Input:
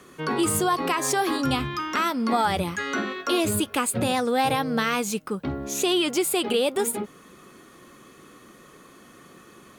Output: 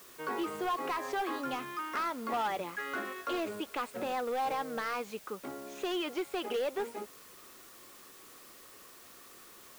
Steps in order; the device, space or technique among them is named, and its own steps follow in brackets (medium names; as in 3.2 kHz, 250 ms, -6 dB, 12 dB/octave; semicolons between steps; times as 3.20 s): aircraft radio (band-pass 390–2400 Hz; hard clipper -21 dBFS, distortion -14 dB; white noise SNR 18 dB); trim -7 dB